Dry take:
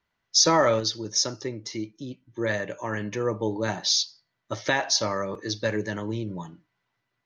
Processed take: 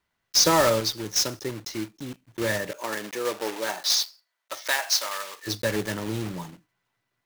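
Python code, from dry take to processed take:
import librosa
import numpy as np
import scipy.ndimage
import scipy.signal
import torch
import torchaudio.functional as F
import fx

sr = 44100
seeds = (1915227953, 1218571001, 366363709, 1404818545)

y = fx.block_float(x, sr, bits=3)
y = fx.highpass(y, sr, hz=fx.line((2.71, 280.0), (5.46, 1200.0)), slope=12, at=(2.71, 5.46), fade=0.02)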